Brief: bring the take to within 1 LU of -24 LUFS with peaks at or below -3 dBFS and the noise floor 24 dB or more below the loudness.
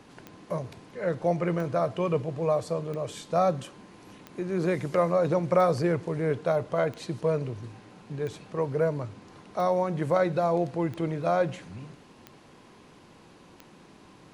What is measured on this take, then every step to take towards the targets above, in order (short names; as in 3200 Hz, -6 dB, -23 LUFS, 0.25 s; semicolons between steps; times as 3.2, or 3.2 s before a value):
clicks 11; loudness -28.0 LUFS; peak -10.0 dBFS; loudness target -24.0 LUFS
-> de-click; gain +4 dB